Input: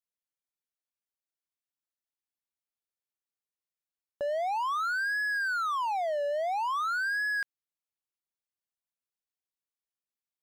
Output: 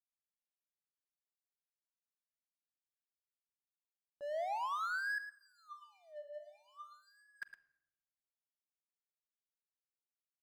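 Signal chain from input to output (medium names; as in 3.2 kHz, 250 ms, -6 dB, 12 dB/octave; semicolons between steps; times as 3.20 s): expander -16 dBFS; 5.18–7.42 s: feedback comb 600 Hz, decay 0.38 s, mix 100%; delay 111 ms -10.5 dB; simulated room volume 3700 m³, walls furnished, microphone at 0.7 m; trim +14 dB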